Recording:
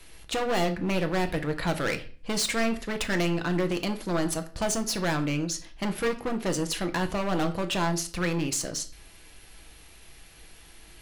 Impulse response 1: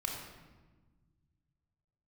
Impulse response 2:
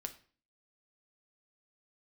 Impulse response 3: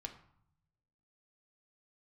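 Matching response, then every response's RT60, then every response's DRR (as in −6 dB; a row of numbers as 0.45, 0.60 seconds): 2; 1.3, 0.40, 0.65 seconds; −1.5, 6.5, 3.5 decibels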